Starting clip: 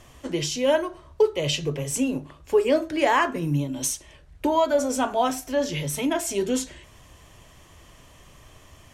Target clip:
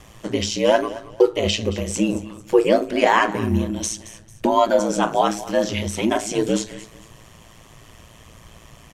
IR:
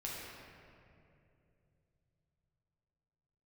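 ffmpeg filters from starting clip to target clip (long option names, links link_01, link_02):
-filter_complex "[0:a]aecho=1:1:223|446|669:0.141|0.0381|0.0103,aeval=exprs='val(0)*sin(2*PI*56*n/s)':channel_layout=same,acrossover=split=7900[link_01][link_02];[link_02]acompressor=threshold=-55dB:ratio=4:attack=1:release=60[link_03];[link_01][link_03]amix=inputs=2:normalize=0,volume=7dB"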